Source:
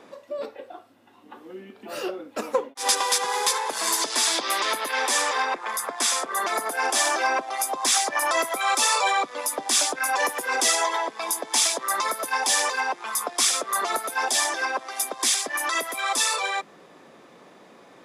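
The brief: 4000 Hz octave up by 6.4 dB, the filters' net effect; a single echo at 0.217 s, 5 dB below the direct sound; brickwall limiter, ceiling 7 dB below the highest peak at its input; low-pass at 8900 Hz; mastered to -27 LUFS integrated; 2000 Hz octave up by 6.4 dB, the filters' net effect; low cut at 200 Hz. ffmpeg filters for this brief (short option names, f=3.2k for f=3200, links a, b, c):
-af "highpass=200,lowpass=8.9k,equalizer=f=2k:t=o:g=6.5,equalizer=f=4k:t=o:g=6.5,alimiter=limit=-11dB:level=0:latency=1,aecho=1:1:217:0.562,volume=-7dB"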